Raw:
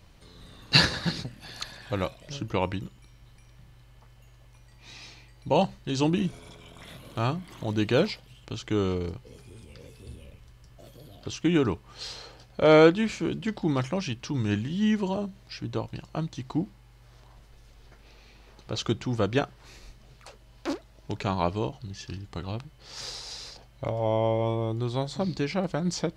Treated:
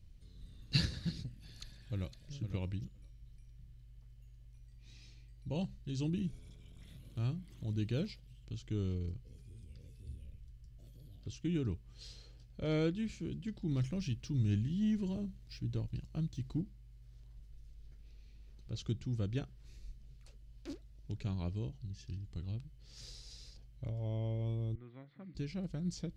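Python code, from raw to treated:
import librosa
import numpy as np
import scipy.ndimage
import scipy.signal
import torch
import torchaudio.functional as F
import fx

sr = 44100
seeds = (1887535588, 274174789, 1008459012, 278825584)

y = fx.echo_throw(x, sr, start_s=1.61, length_s=0.72, ms=510, feedback_pct=10, wet_db=-9.5)
y = fx.leveller(y, sr, passes=1, at=(13.71, 16.61))
y = fx.cabinet(y, sr, low_hz=360.0, low_slope=12, high_hz=2100.0, hz=(400.0, 590.0, 870.0, 1300.0, 2000.0), db=(-10, -6, -6, 4, 8), at=(24.75, 25.35))
y = fx.tone_stack(y, sr, knobs='10-0-1')
y = y * librosa.db_to_amplitude(6.5)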